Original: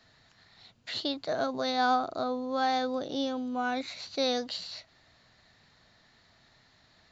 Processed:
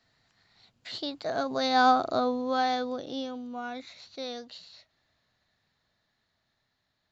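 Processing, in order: Doppler pass-by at 2.04, 8 m/s, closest 3.5 m; gain +5.5 dB

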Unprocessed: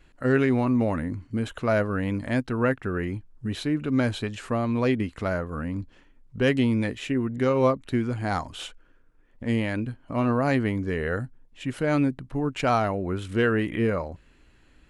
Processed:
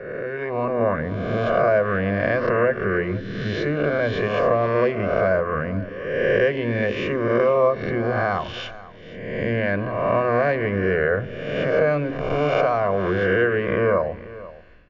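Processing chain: spectral swells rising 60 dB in 1.16 s; low shelf 260 Hz -4.5 dB; compressor, threshold -26 dBFS, peak gain reduction 10 dB; rippled Chebyshev low-pass 6700 Hz, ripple 3 dB; tilt shelf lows +7 dB; AGC gain up to 11.5 dB; echo 0.487 s -18 dB; reverb RT60 0.80 s, pre-delay 3 ms, DRR 17.5 dB; gain -8.5 dB

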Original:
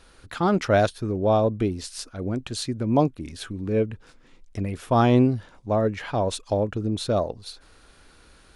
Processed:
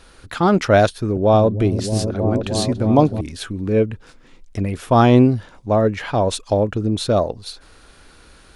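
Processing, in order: 0.85–3.21 repeats that get brighter 0.312 s, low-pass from 200 Hz, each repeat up 1 oct, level -3 dB; gain +6 dB

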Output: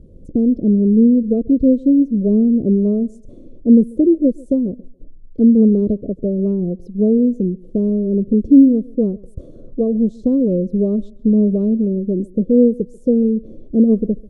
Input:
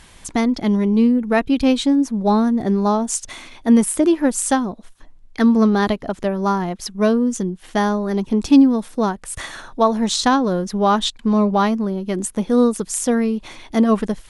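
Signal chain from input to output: rattling part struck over -22 dBFS, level -14 dBFS; in parallel at -1 dB: compressor, threshold -27 dBFS, peak gain reduction 18 dB; on the sum: elliptic low-pass 530 Hz, stop band 40 dB; thinning echo 0.14 s, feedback 30%, high-pass 190 Hz, level -22.5 dB; gain +2 dB

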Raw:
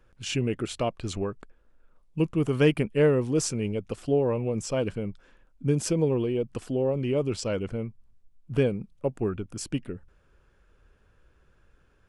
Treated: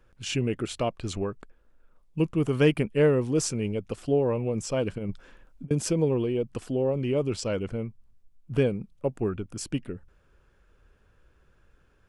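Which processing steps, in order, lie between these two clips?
4.98–5.71 negative-ratio compressor -33 dBFS, ratio -0.5

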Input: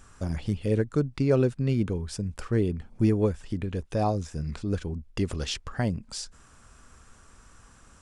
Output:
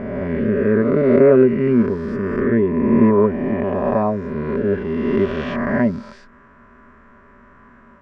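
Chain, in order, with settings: spectral swells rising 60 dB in 2.15 s; synth low-pass 1900 Hz, resonance Q 3.9; small resonant body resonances 240/390/580/990 Hz, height 18 dB, ringing for 55 ms; gain -5 dB

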